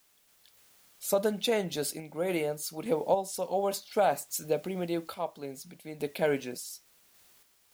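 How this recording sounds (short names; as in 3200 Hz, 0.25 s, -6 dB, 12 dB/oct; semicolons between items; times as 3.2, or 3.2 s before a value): a quantiser's noise floor 10-bit, dither triangular; random-step tremolo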